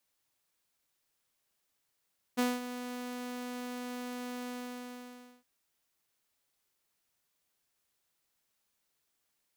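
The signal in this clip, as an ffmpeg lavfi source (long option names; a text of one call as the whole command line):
ffmpeg -f lavfi -i "aevalsrc='0.0708*(2*mod(247*t,1)-1)':duration=3.065:sample_rate=44100,afade=type=in:duration=0.022,afade=type=out:start_time=0.022:duration=0.202:silence=0.237,afade=type=out:start_time=2.11:duration=0.955" out.wav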